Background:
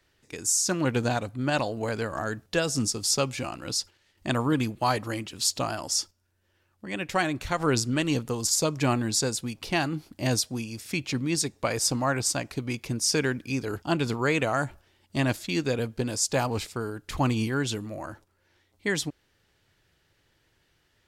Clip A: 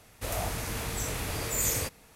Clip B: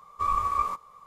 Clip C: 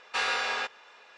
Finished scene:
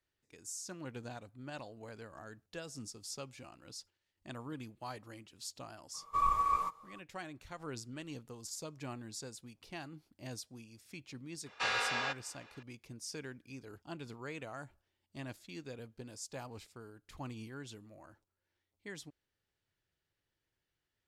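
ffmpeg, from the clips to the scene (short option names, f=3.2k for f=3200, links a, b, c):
-filter_complex "[0:a]volume=-19.5dB[a];[2:a]aecho=1:1:6.3:0.48[b];[3:a]lowpass=9.5k[c];[b]atrim=end=1.06,asetpts=PTS-STARTPTS,volume=-5.5dB,afade=t=in:d=0.004:c=hsin,afade=t=out:st=1.056:d=0.004:c=hsin,adelay=5940[d];[c]atrim=end=1.17,asetpts=PTS-STARTPTS,volume=-5dB,afade=t=in:d=0.004:c=hsin,afade=t=out:st=1.166:d=0.004:c=hsin,adelay=505386S[e];[a][d][e]amix=inputs=3:normalize=0"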